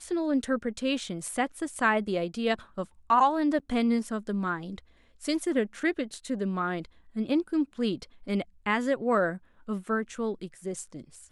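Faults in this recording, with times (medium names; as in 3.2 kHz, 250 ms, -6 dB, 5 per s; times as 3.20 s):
3.59–3.60 s: dropout 7.9 ms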